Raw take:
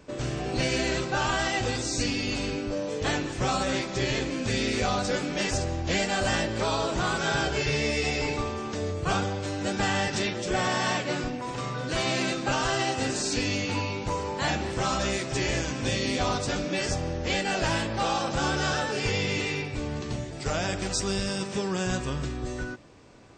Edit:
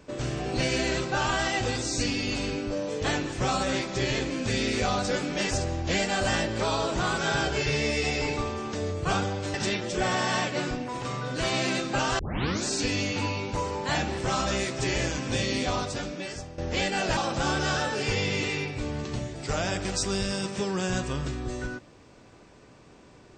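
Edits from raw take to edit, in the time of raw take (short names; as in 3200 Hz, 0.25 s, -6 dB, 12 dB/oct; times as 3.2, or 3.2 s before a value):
9.54–10.07 cut
12.72 tape start 0.47 s
16.05–17.11 fade out, to -14.5 dB
17.7–18.14 cut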